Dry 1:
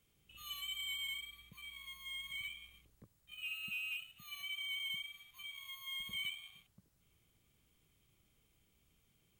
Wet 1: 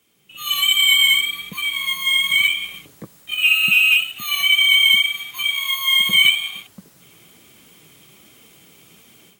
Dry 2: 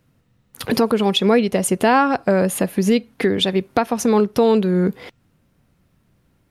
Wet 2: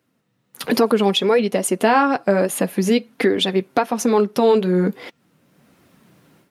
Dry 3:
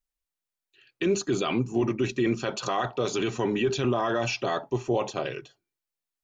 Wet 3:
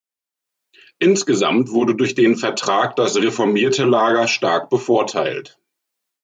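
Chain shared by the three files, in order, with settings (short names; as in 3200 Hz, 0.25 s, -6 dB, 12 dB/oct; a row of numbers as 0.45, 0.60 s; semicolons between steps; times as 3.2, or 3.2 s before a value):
HPF 190 Hz 12 dB/oct; AGC gain up to 15 dB; flange 1.2 Hz, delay 2.5 ms, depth 5 ms, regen -41%; normalise peaks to -3 dBFS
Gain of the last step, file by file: +16.5, +1.0, +2.5 dB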